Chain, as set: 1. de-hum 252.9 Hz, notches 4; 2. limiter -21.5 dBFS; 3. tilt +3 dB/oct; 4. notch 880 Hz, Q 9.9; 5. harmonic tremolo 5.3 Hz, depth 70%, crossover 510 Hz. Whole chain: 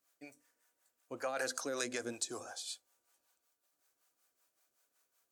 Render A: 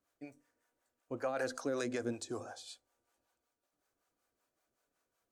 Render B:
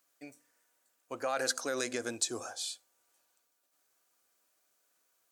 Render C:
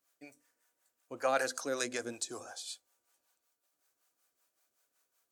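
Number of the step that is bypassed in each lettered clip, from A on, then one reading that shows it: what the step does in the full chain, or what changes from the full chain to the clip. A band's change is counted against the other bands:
3, 125 Hz band +10.0 dB; 5, momentary loudness spread change +1 LU; 2, crest factor change -2.0 dB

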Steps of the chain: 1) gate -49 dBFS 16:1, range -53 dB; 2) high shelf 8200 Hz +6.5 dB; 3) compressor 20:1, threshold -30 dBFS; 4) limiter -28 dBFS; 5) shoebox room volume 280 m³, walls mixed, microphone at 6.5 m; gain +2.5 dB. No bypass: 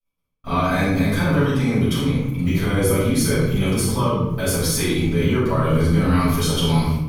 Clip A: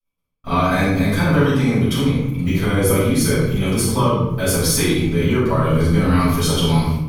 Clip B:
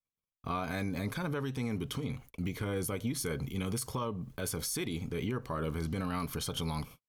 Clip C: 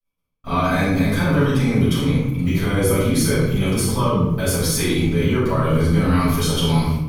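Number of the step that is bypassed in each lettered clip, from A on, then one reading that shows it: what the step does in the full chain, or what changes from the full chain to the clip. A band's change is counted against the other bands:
4, loudness change +2.0 LU; 5, echo-to-direct 12.5 dB to none; 3, mean gain reduction 3.5 dB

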